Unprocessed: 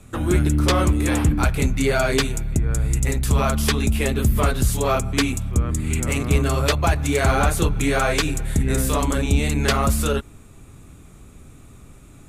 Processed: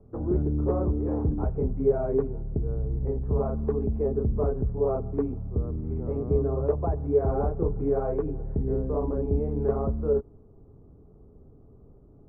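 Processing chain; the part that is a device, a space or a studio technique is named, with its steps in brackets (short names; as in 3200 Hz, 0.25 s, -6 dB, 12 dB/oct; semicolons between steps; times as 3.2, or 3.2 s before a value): under water (LPF 860 Hz 24 dB/oct; bell 430 Hz +10.5 dB 0.33 oct); gain -8 dB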